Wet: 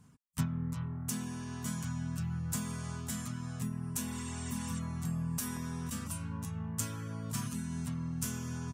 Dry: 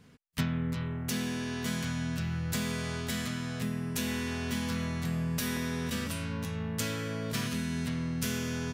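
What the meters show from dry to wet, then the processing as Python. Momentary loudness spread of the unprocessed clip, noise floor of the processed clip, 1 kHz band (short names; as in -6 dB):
3 LU, -43 dBFS, -4.5 dB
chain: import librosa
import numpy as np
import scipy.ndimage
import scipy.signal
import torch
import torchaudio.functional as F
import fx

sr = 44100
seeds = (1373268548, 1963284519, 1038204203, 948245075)

y = fx.graphic_eq_10(x, sr, hz=(125, 500, 1000, 2000, 4000, 8000), db=(5, -10, 6, -8, -8, 8))
y = fx.spec_repair(y, sr, seeds[0], start_s=4.13, length_s=0.64, low_hz=1300.0, high_hz=9100.0, source='before')
y = fx.dereverb_blind(y, sr, rt60_s=0.61)
y = F.gain(torch.from_numpy(y), -3.5).numpy()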